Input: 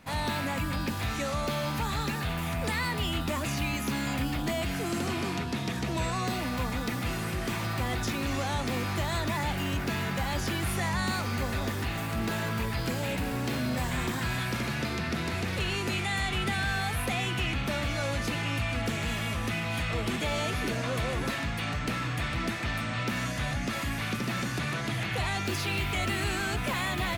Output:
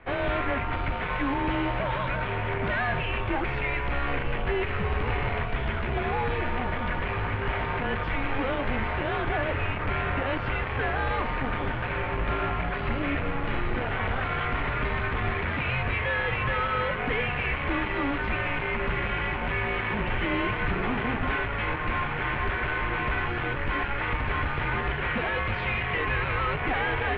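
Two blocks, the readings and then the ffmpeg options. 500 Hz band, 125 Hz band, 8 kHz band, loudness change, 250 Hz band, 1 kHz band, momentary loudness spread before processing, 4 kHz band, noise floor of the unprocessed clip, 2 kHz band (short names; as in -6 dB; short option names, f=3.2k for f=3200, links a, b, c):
+4.5 dB, +0.5 dB, under -35 dB, +2.5 dB, -1.0 dB, +5.0 dB, 2 LU, -4.0 dB, -33 dBFS, +4.5 dB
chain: -filter_complex "[0:a]asplit=2[a][b];[b]acrusher=bits=3:dc=4:mix=0:aa=0.000001,volume=-6dB[c];[a][c]amix=inputs=2:normalize=0,bandreject=f=87.75:t=h:w=4,bandreject=f=175.5:t=h:w=4,bandreject=f=263.25:t=h:w=4,bandreject=f=351:t=h:w=4,bandreject=f=438.75:t=h:w=4,bandreject=f=526.5:t=h:w=4,bandreject=f=614.25:t=h:w=4,bandreject=f=702:t=h:w=4,bandreject=f=789.75:t=h:w=4,bandreject=f=877.5:t=h:w=4,bandreject=f=965.25:t=h:w=4,bandreject=f=1.053k:t=h:w=4,bandreject=f=1.14075k:t=h:w=4,bandreject=f=1.2285k:t=h:w=4,bandreject=f=1.31625k:t=h:w=4,bandreject=f=1.404k:t=h:w=4,bandreject=f=1.49175k:t=h:w=4,bandreject=f=1.5795k:t=h:w=4,bandreject=f=1.66725k:t=h:w=4,bandreject=f=1.755k:t=h:w=4,bandreject=f=1.84275k:t=h:w=4,bandreject=f=1.9305k:t=h:w=4,bandreject=f=2.01825k:t=h:w=4,bandreject=f=2.106k:t=h:w=4,bandreject=f=2.19375k:t=h:w=4,bandreject=f=2.2815k:t=h:w=4,bandreject=f=2.36925k:t=h:w=4,bandreject=f=2.457k:t=h:w=4,bandreject=f=2.54475k:t=h:w=4,bandreject=f=2.6325k:t=h:w=4,bandreject=f=2.72025k:t=h:w=4,bandreject=f=2.808k:t=h:w=4,bandreject=f=2.89575k:t=h:w=4,bandreject=f=2.9835k:t=h:w=4,bandreject=f=3.07125k:t=h:w=4,asoftclip=type=hard:threshold=-28.5dB,highpass=f=170:t=q:w=0.5412,highpass=f=170:t=q:w=1.307,lowpass=f=3k:t=q:w=0.5176,lowpass=f=3k:t=q:w=0.7071,lowpass=f=3k:t=q:w=1.932,afreqshift=-270,volume=6.5dB"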